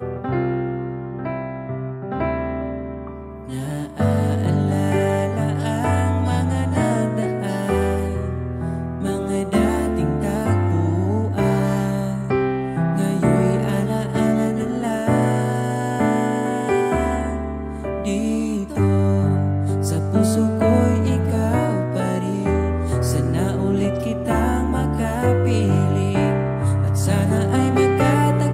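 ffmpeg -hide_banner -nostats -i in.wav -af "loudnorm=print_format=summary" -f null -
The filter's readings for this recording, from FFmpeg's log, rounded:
Input Integrated:    -20.4 LUFS
Input True Peak:      -4.7 dBTP
Input LRA:             3.8 LU
Input Threshold:     -30.5 LUFS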